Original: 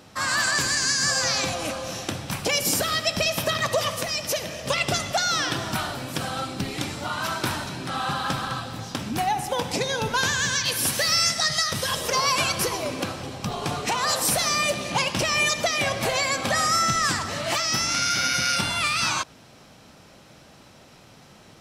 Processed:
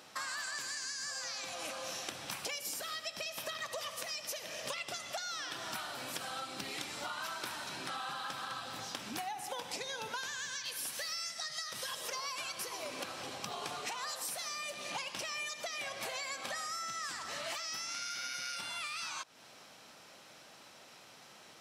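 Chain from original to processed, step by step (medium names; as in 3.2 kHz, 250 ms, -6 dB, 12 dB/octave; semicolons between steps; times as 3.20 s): high-pass 790 Hz 6 dB/octave; compression 8:1, threshold -35 dBFS, peak gain reduction 17 dB; trim -2.5 dB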